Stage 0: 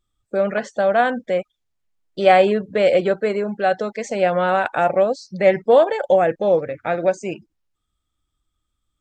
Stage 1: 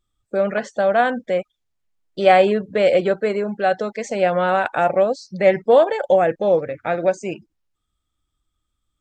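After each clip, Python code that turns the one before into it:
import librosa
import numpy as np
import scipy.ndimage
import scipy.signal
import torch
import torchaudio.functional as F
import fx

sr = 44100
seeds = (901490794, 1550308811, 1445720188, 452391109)

y = x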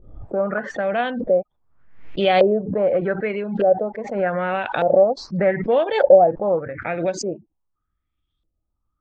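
y = fx.low_shelf(x, sr, hz=420.0, db=7.5)
y = fx.filter_lfo_lowpass(y, sr, shape='saw_up', hz=0.83, low_hz=500.0, high_hz=4100.0, q=3.7)
y = fx.pre_swell(y, sr, db_per_s=75.0)
y = F.gain(torch.from_numpy(y), -8.5).numpy()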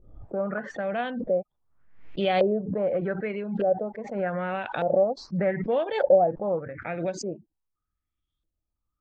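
y = fx.dynamic_eq(x, sr, hz=170.0, q=1.2, threshold_db=-37.0, ratio=4.0, max_db=4)
y = F.gain(torch.from_numpy(y), -7.5).numpy()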